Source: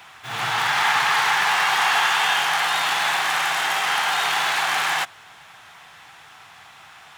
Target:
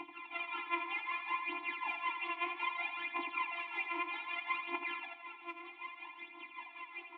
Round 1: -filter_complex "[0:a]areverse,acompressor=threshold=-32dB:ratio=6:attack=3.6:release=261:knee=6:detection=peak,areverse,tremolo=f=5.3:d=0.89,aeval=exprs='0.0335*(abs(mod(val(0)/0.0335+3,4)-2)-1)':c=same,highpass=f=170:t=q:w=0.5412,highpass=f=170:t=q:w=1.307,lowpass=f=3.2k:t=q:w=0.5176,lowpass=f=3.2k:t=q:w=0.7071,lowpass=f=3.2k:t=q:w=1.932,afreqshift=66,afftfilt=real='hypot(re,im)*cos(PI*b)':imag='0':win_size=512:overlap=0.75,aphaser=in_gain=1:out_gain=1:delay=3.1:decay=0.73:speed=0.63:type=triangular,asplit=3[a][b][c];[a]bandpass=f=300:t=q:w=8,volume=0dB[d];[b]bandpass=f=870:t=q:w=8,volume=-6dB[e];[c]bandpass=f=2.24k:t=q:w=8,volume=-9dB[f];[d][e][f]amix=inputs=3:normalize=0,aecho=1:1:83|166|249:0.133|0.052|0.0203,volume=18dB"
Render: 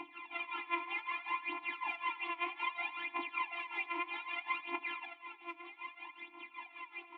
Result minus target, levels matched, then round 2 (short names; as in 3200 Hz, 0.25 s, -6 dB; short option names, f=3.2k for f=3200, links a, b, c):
echo-to-direct -10 dB
-filter_complex "[0:a]areverse,acompressor=threshold=-32dB:ratio=6:attack=3.6:release=261:knee=6:detection=peak,areverse,tremolo=f=5.3:d=0.89,aeval=exprs='0.0335*(abs(mod(val(0)/0.0335+3,4)-2)-1)':c=same,highpass=f=170:t=q:w=0.5412,highpass=f=170:t=q:w=1.307,lowpass=f=3.2k:t=q:w=0.5176,lowpass=f=3.2k:t=q:w=0.7071,lowpass=f=3.2k:t=q:w=1.932,afreqshift=66,afftfilt=real='hypot(re,im)*cos(PI*b)':imag='0':win_size=512:overlap=0.75,aphaser=in_gain=1:out_gain=1:delay=3.1:decay=0.73:speed=0.63:type=triangular,asplit=3[a][b][c];[a]bandpass=f=300:t=q:w=8,volume=0dB[d];[b]bandpass=f=870:t=q:w=8,volume=-6dB[e];[c]bandpass=f=2.24k:t=q:w=8,volume=-9dB[f];[d][e][f]amix=inputs=3:normalize=0,aecho=1:1:83|166|249|332:0.422|0.164|0.0641|0.025,volume=18dB"